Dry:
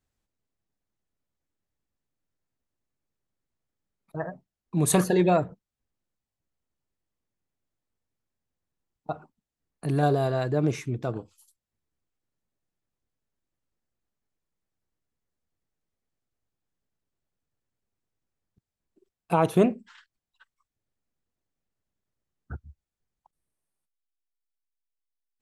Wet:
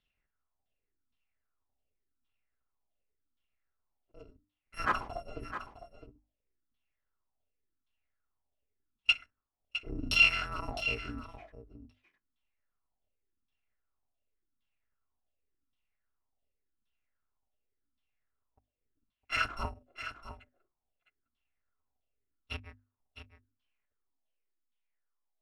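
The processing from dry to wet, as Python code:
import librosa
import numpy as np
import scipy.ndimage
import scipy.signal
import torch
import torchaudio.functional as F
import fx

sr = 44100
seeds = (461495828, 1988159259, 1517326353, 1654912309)

p1 = fx.bit_reversed(x, sr, seeds[0], block=256)
p2 = fx.filter_lfo_lowpass(p1, sr, shape='saw_down', hz=0.89, low_hz=230.0, high_hz=3500.0, q=5.0)
p3 = fx.hum_notches(p2, sr, base_hz=50, count=6)
y = p3 + fx.echo_single(p3, sr, ms=659, db=-10.5, dry=0)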